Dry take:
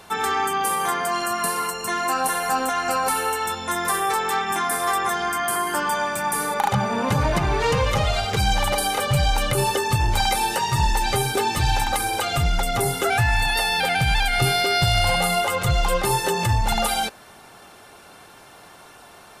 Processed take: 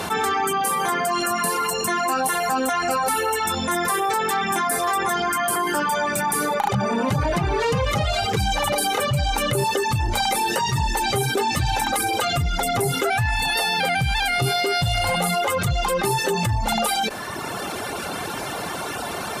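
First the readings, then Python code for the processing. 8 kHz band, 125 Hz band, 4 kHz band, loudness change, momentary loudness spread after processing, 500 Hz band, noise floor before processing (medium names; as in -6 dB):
+0.5 dB, -1.0 dB, 0.0 dB, -0.5 dB, 8 LU, +1.5 dB, -47 dBFS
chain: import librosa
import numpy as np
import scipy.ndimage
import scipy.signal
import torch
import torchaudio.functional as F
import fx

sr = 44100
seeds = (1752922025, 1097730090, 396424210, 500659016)

y = scipy.signal.sosfilt(scipy.signal.butter(2, 42.0, 'highpass', fs=sr, output='sos'), x)
y = fx.dereverb_blind(y, sr, rt60_s=0.89)
y = fx.peak_eq(y, sr, hz=240.0, db=4.0, octaves=2.4)
y = fx.cheby_harmonics(y, sr, harmonics=(5, 8), levels_db=(-32, -41), full_scale_db=-7.0)
y = fx.env_flatten(y, sr, amount_pct=70)
y = y * librosa.db_to_amplitude(-5.0)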